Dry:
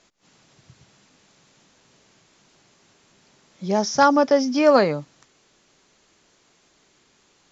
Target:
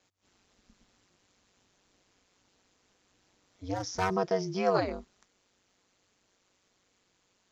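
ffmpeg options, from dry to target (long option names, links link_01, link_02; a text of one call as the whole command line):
ffmpeg -i in.wav -filter_complex "[0:a]asplit=3[link_01][link_02][link_03];[link_01]afade=type=out:start_time=3.73:duration=0.02[link_04];[link_02]aeval=exprs='clip(val(0),-1,0.126)':channel_layout=same,afade=type=in:start_time=3.73:duration=0.02,afade=type=out:start_time=4.14:duration=0.02[link_05];[link_03]afade=type=in:start_time=4.14:duration=0.02[link_06];[link_04][link_05][link_06]amix=inputs=3:normalize=0,aeval=exprs='val(0)*sin(2*PI*94*n/s)':channel_layout=same,volume=-8.5dB" out.wav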